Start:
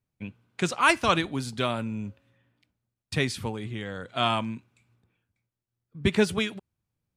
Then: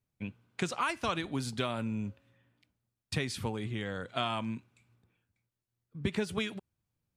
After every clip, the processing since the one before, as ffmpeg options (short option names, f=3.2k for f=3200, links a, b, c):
-af "acompressor=threshold=-26dB:ratio=16,volume=-1.5dB"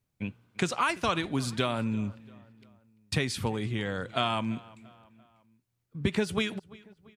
-filter_complex "[0:a]asplit=2[a][b];[b]adelay=341,lowpass=f=3.5k:p=1,volume=-21.5dB,asplit=2[c][d];[d]adelay=341,lowpass=f=3.5k:p=1,volume=0.49,asplit=2[e][f];[f]adelay=341,lowpass=f=3.5k:p=1,volume=0.49[g];[a][c][e][g]amix=inputs=4:normalize=0,volume=4.5dB"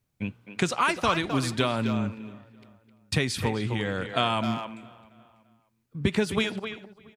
-filter_complex "[0:a]asplit=2[a][b];[b]adelay=260,highpass=300,lowpass=3.4k,asoftclip=type=hard:threshold=-21dB,volume=-7dB[c];[a][c]amix=inputs=2:normalize=0,volume=3dB"